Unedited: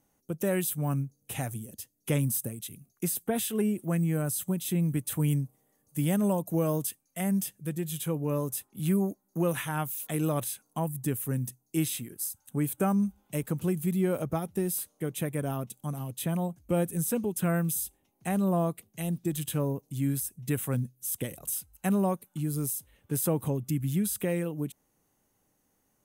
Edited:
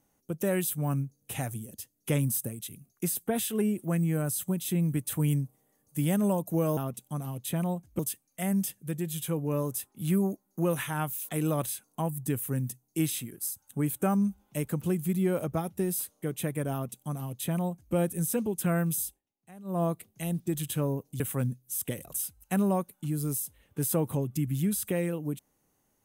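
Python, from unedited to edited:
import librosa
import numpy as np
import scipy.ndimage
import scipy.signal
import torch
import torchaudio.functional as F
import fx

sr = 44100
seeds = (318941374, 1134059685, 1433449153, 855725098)

y = fx.edit(x, sr, fx.duplicate(start_s=15.5, length_s=1.22, to_s=6.77),
    fx.fade_down_up(start_s=17.81, length_s=0.8, db=-20.0, fade_s=0.19),
    fx.cut(start_s=19.98, length_s=0.55), tone=tone)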